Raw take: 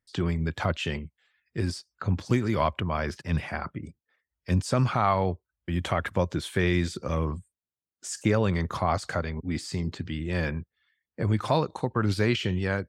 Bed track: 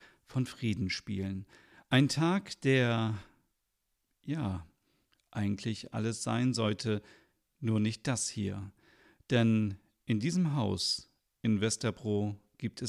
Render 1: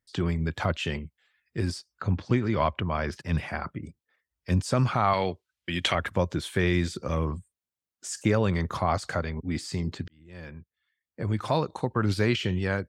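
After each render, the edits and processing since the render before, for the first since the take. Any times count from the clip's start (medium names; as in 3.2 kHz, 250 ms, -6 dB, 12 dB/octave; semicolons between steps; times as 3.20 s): 2.14–3.11 s: low-pass 3.5 kHz -> 6.2 kHz; 5.13–5.95 s: frequency weighting D; 10.08–11.81 s: fade in linear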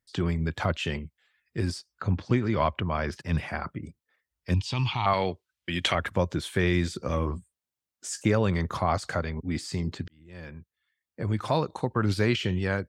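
4.54–5.06 s: FFT filter 110 Hz 0 dB, 210 Hz -11 dB, 330 Hz -5 dB, 590 Hz -20 dB, 910 Hz +3 dB, 1.4 kHz -16 dB, 2.9 kHz +13 dB, 9.7 kHz -14 dB; 7.00–8.20 s: doubling 16 ms -8.5 dB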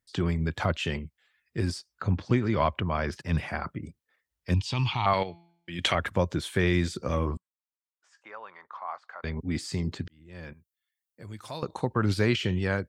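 5.23–5.79 s: feedback comb 170 Hz, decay 0.68 s, mix 70%; 7.37–9.24 s: ladder band-pass 1.2 kHz, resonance 40%; 10.53–11.63 s: pre-emphasis filter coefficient 0.8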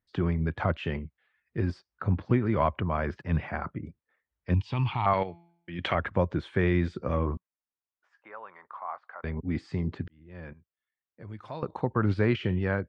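low-pass 2 kHz 12 dB/octave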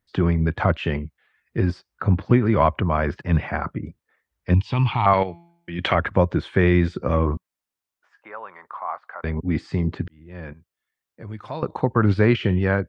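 trim +7.5 dB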